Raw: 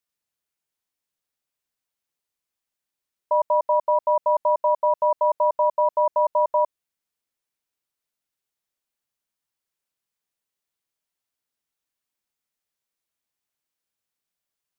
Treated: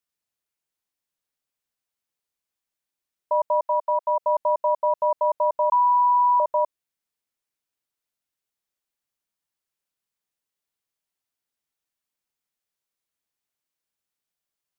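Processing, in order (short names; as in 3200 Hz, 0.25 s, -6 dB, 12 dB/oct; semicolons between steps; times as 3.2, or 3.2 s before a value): 3.63–4.2 steep high-pass 590 Hz; 5.72–6.4 bleep 981 Hz -13.5 dBFS; gain -1.5 dB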